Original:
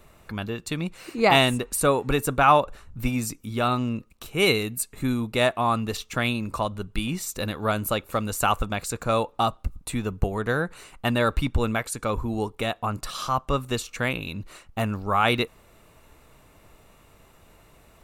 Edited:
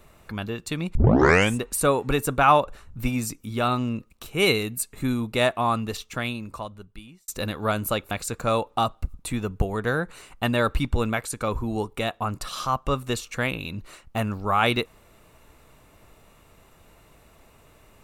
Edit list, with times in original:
0.95 s: tape start 0.61 s
5.65–7.28 s: fade out
8.11–8.73 s: delete

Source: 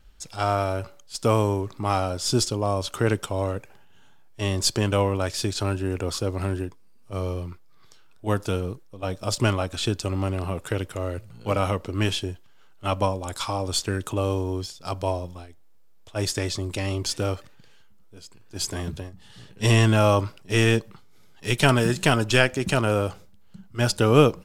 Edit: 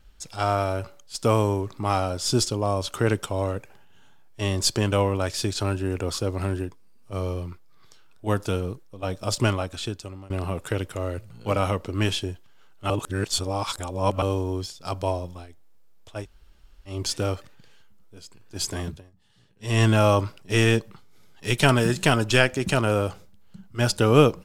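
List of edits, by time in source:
9.43–10.30 s: fade out, to -23.5 dB
12.90–14.22 s: reverse
16.19–16.93 s: room tone, crossfade 0.16 s
18.85–19.83 s: dip -14.5 dB, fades 0.17 s

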